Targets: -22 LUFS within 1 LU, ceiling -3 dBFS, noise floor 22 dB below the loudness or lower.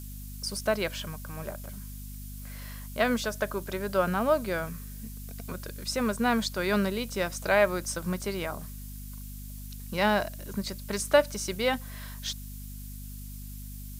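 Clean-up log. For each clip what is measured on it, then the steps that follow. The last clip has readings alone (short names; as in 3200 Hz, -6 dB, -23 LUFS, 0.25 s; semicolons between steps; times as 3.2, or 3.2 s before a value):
hum 50 Hz; harmonics up to 250 Hz; hum level -39 dBFS; noise floor -41 dBFS; noise floor target -52 dBFS; loudness -29.5 LUFS; peak -7.5 dBFS; loudness target -22.0 LUFS
-> de-hum 50 Hz, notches 5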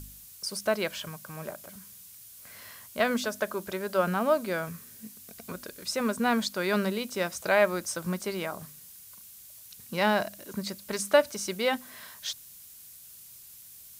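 hum none; noise floor -50 dBFS; noise floor target -52 dBFS
-> noise print and reduce 6 dB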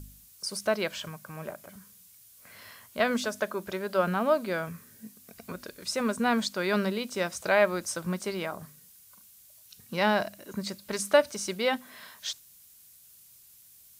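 noise floor -56 dBFS; loudness -29.5 LUFS; peak -7.5 dBFS; loudness target -22.0 LUFS
-> gain +7.5 dB; limiter -3 dBFS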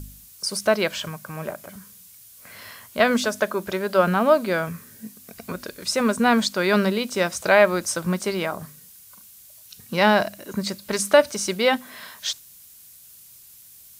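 loudness -22.0 LUFS; peak -3.0 dBFS; noise floor -48 dBFS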